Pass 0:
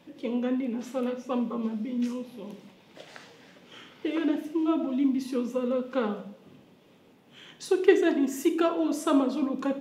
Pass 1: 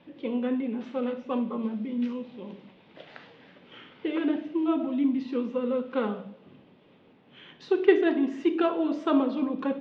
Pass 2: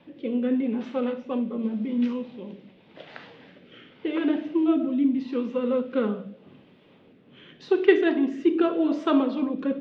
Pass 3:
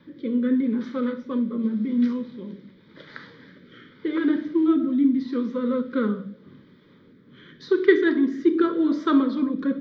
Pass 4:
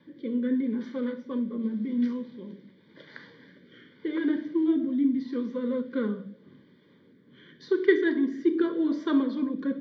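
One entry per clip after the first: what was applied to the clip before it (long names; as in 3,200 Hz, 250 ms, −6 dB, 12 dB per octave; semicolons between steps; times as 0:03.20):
low-pass filter 3,700 Hz 24 dB per octave
rotating-speaker cabinet horn 0.85 Hz; level +4.5 dB
phaser with its sweep stopped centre 2,700 Hz, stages 6; level +4.5 dB
notch comb filter 1,300 Hz; level −4 dB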